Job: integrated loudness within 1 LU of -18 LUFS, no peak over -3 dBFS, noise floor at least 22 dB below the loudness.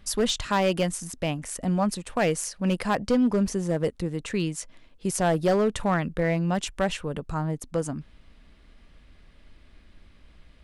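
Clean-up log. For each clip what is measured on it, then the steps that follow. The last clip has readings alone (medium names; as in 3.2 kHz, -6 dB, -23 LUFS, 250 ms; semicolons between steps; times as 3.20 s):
clipped samples 1.0%; clipping level -16.5 dBFS; loudness -26.5 LUFS; peak level -16.5 dBFS; loudness target -18.0 LUFS
-> clip repair -16.5 dBFS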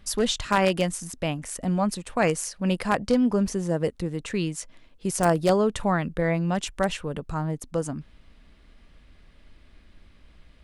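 clipped samples 0.0%; loudness -26.0 LUFS; peak level -7.5 dBFS; loudness target -18.0 LUFS
-> trim +8 dB; peak limiter -3 dBFS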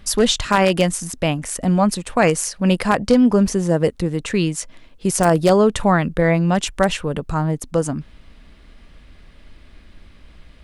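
loudness -18.5 LUFS; peak level -3.0 dBFS; noise floor -47 dBFS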